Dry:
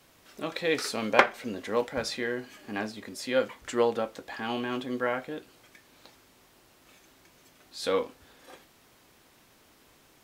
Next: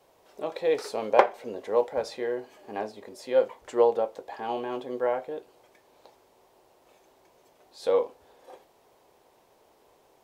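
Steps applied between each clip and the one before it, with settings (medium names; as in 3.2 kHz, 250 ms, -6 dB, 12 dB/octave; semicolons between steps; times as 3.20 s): high-order bell 610 Hz +12.5 dB; trim -8 dB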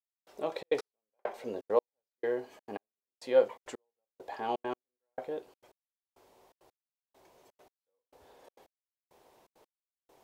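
trance gate "...xxxx.x.." 168 bpm -60 dB; trim -1.5 dB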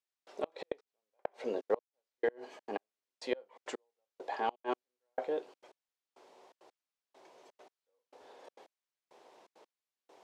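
band-pass 280–6600 Hz; inverted gate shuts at -23 dBFS, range -32 dB; trim +3.5 dB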